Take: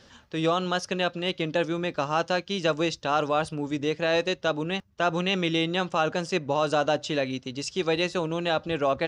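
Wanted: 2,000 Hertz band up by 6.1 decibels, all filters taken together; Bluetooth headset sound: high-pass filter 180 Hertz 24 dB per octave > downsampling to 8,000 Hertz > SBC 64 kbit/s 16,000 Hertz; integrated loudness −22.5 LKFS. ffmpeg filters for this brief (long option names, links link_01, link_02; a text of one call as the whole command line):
ffmpeg -i in.wav -af "highpass=frequency=180:width=0.5412,highpass=frequency=180:width=1.3066,equalizer=frequency=2000:width_type=o:gain=8.5,aresample=8000,aresample=44100,volume=2.5dB" -ar 16000 -c:a sbc -b:a 64k out.sbc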